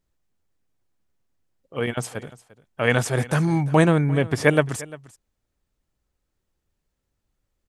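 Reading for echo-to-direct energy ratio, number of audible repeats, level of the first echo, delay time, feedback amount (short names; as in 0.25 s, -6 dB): -19.5 dB, 1, -19.5 dB, 0.348 s, no steady repeat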